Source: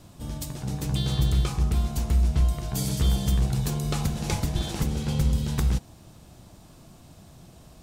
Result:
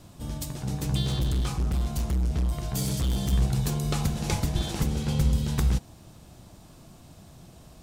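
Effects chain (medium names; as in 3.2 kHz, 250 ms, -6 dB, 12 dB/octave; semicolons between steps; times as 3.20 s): 1.03–3.33 s: hard clipper -22.5 dBFS, distortion -11 dB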